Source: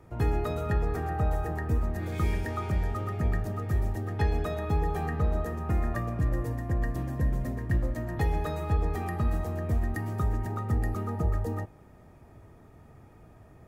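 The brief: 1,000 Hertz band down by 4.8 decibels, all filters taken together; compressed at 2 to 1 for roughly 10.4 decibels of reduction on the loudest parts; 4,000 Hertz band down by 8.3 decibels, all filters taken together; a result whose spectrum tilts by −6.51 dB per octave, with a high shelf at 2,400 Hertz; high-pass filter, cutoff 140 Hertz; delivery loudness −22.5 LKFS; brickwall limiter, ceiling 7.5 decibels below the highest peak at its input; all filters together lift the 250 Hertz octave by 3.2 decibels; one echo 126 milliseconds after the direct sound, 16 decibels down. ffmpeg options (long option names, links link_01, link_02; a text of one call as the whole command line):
ffmpeg -i in.wav -af "highpass=140,equalizer=frequency=250:width_type=o:gain=5.5,equalizer=frequency=1000:width_type=o:gain=-6,highshelf=frequency=2400:gain=-3.5,equalizer=frequency=4000:width_type=o:gain=-7,acompressor=threshold=-46dB:ratio=2,alimiter=level_in=11.5dB:limit=-24dB:level=0:latency=1,volume=-11.5dB,aecho=1:1:126:0.158,volume=22dB" out.wav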